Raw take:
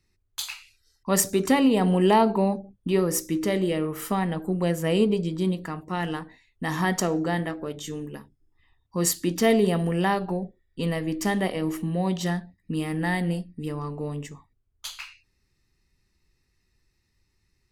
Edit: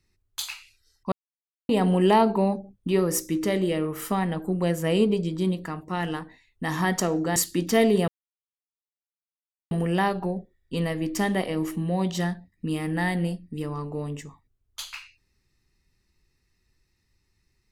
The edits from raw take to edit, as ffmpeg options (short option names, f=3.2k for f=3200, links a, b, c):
-filter_complex "[0:a]asplit=5[a][b][c][d][e];[a]atrim=end=1.12,asetpts=PTS-STARTPTS,afade=t=out:st=1.116:d=0.004:c=hsin[f];[b]atrim=start=1.12:end=1.69,asetpts=PTS-STARTPTS,volume=0[g];[c]atrim=start=1.69:end=7.362,asetpts=PTS-STARTPTS,afade=t=in:d=0.004:c=hsin[h];[d]atrim=start=9.048:end=9.77,asetpts=PTS-STARTPTS,afade=t=out:st=0.718:d=0.004:c=hsin,apad=pad_dur=1.63[i];[e]atrim=start=9.77,asetpts=PTS-STARTPTS,afade=t=in:d=0.004:c=hsin[j];[f][g][h]concat=n=3:v=0:a=1[k];[i][j]concat=n=2:v=0:a=1[l];[k][l]acrossfade=d=0.004:c1=hsin:c2=hsin"